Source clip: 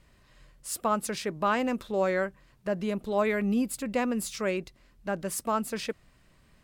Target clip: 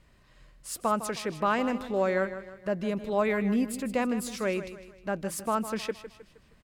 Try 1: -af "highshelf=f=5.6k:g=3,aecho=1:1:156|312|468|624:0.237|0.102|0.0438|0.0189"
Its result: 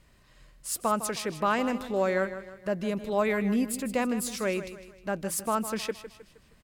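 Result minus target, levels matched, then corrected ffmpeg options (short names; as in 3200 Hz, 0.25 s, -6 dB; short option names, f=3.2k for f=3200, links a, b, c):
8000 Hz band +4.5 dB
-af "highshelf=f=5.6k:g=-4,aecho=1:1:156|312|468|624:0.237|0.102|0.0438|0.0189"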